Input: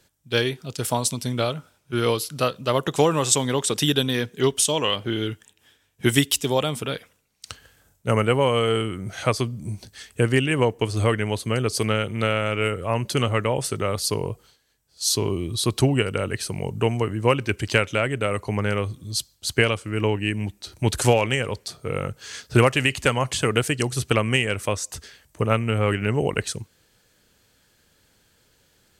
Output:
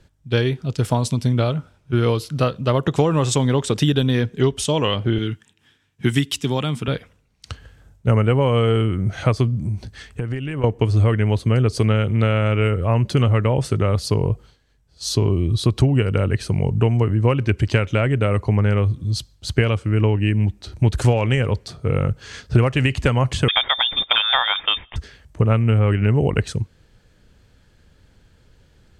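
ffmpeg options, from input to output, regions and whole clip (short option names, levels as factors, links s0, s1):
-filter_complex "[0:a]asettb=1/sr,asplit=3[s0][s1][s2];[s0]atrim=end=5.184[s3];[s1]atrim=start=5.18:end=6.88,asetpts=PTS-STARTPTS,afade=t=in:d=0.004:c=qsin,afade=t=out:st=1.696:d=0.004:c=qsin,highpass=150,equalizer=f=560:w=1.1:g=-9[s4];[s2]atrim=start=6.876[s5];[s3][s4]acrossfade=d=0.004:c1=hsin:c2=qsin[s6];[s6][s5]acrossfade=d=0.004:c1=qsin:c2=hsin,asettb=1/sr,asplit=3[s7][s8][s9];[s7]atrim=end=9.594[s10];[s8]atrim=start=9.59:end=10.64,asetpts=PTS-STARTPTS,afade=t=in:d=0.004:c=qsin,afade=t=out:st=1.046:d=0.004:c=qsin,acompressor=threshold=0.0282:ratio=6:attack=3.2:release=140:knee=1:detection=peak,equalizer=f=1400:t=o:w=1.8:g=2.5[s11];[s9]atrim=start=10.636[s12];[s10][s11]acrossfade=d=0.004:c1=hsin:c2=qsin[s13];[s13][s12]acrossfade=d=0.004:c1=qsin:c2=hsin,asettb=1/sr,asplit=3[s14][s15][s16];[s14]atrim=end=23.484[s17];[s15]atrim=start=23.48:end=24.96,asetpts=PTS-STARTPTS,afade=t=in:d=0.004:c=qsin,afade=t=out:st=1.476:d=0.004:c=qsin,acontrast=48,lowpass=f=3100:t=q:w=0.5098,lowpass=f=3100:t=q:w=0.6013,lowpass=f=3100:t=q:w=0.9,lowpass=f=3100:t=q:w=2.563,afreqshift=-3700[s18];[s16]atrim=start=24.956[s19];[s17][s18]acrossfade=d=0.004:c1=hsin:c2=qsin[s20];[s20][s19]acrossfade=d=0.004:c1=qsin:c2=hsin,aemphasis=mode=reproduction:type=bsi,acompressor=threshold=0.141:ratio=3,volume=1.41"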